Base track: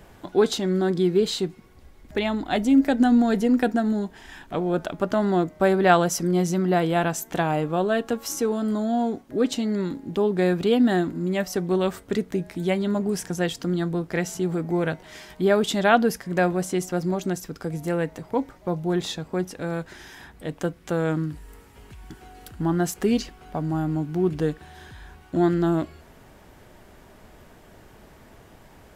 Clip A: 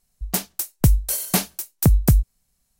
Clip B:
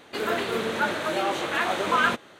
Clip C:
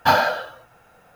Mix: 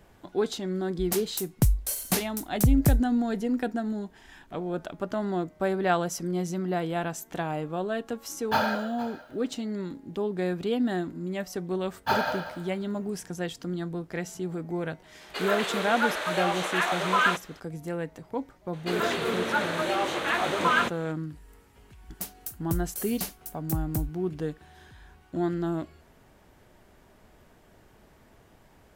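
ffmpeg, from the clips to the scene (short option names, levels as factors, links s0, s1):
-filter_complex "[1:a]asplit=2[s0][s1];[3:a]asplit=2[s2][s3];[2:a]asplit=2[s4][s5];[0:a]volume=0.422[s6];[s0]aresample=32000,aresample=44100[s7];[s2]aecho=1:1:465:0.133[s8];[s3]aecho=1:1:190|380|570:0.299|0.0806|0.0218[s9];[s4]highpass=550[s10];[s5]acontrast=38[s11];[s1]highshelf=f=11000:g=7.5[s12];[s7]atrim=end=2.79,asetpts=PTS-STARTPTS,volume=0.501,afade=t=in:d=0.004:c=hsin,afade=t=out:st=2.786:d=0.004:c=hsin,adelay=780[s13];[s8]atrim=end=1.15,asetpts=PTS-STARTPTS,volume=0.355,afade=t=in:d=0.004:c=hsin,afade=t=out:st=1.146:d=0.004:c=hsin,adelay=8460[s14];[s9]atrim=end=1.15,asetpts=PTS-STARTPTS,volume=0.355,afade=t=in:d=0.1,afade=t=out:st=1.05:d=0.1,adelay=12010[s15];[s10]atrim=end=2.39,asetpts=PTS-STARTPTS,volume=0.944,afade=t=in:d=0.004:c=hsin,afade=t=out:st=2.386:d=0.004:c=hsin,adelay=15210[s16];[s11]atrim=end=2.39,asetpts=PTS-STARTPTS,volume=0.473,afade=t=in:d=0.004:c=hsin,afade=t=out:st=2.386:d=0.004:c=hsin,adelay=18730[s17];[s12]atrim=end=2.79,asetpts=PTS-STARTPTS,volume=0.168,afade=t=in:d=0.004:c=hsin,afade=t=out:st=2.786:d=0.004:c=hsin,adelay=21870[s18];[s6][s13][s14][s15][s16][s17][s18]amix=inputs=7:normalize=0"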